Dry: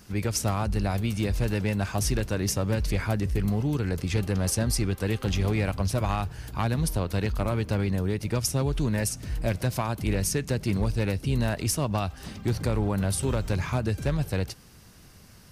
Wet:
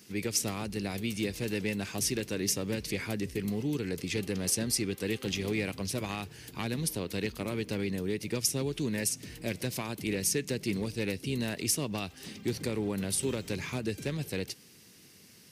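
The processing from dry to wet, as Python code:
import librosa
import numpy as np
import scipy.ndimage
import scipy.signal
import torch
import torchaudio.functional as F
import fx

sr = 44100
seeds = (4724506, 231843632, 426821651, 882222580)

y = scipy.signal.sosfilt(scipy.signal.bessel(2, 260.0, 'highpass', norm='mag', fs=sr, output='sos'), x)
y = fx.band_shelf(y, sr, hz=940.0, db=-10.0, octaves=1.7)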